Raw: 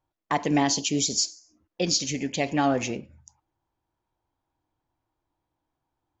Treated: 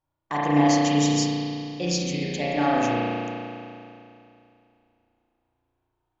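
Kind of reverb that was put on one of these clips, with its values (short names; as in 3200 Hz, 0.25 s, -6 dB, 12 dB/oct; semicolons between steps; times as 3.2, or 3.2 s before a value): spring tank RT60 2.7 s, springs 34 ms, chirp 35 ms, DRR -7 dB; gain -5 dB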